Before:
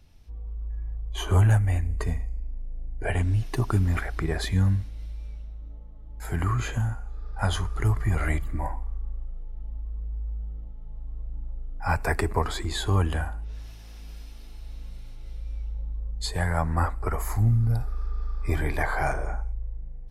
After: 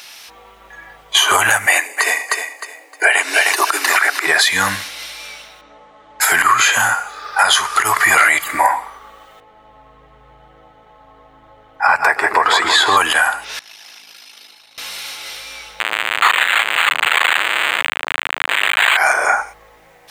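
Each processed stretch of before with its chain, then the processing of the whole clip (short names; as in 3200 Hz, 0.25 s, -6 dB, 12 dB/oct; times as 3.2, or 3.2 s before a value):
1.66–4.27 steep high-pass 290 Hz 72 dB/oct + notch 3300 Hz, Q 10 + feedback echo 0.308 s, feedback 24%, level -9 dB
5.61–6.21 LPF 8200 Hz 24 dB/oct + high shelf 2900 Hz -10 dB
9.4–12.97 LPF 1200 Hz 6 dB/oct + AM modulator 79 Hz, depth 15% + split-band echo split 470 Hz, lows 0.113 s, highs 0.16 s, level -9.5 dB
13.59–14.78 formant sharpening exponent 1.5 + HPF 200 Hz + tube stage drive 52 dB, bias 0.7
15.8–18.97 infinite clipping + weighting filter D + decimation joined by straight lines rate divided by 8×
whole clip: HPF 1300 Hz 12 dB/oct; compressor 6:1, threshold -40 dBFS; maximiser +34 dB; gain -1 dB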